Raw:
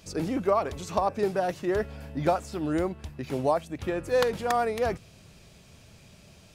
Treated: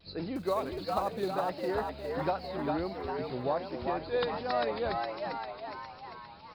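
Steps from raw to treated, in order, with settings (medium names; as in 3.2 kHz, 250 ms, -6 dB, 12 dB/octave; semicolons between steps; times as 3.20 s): knee-point frequency compression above 3.6 kHz 4:1; 0.36–1.33 s: companded quantiser 6-bit; on a send: frequency-shifting echo 405 ms, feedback 57%, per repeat +100 Hz, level -3.5 dB; on the sum: vibrato 1.4 Hz 63 cents; trim -7 dB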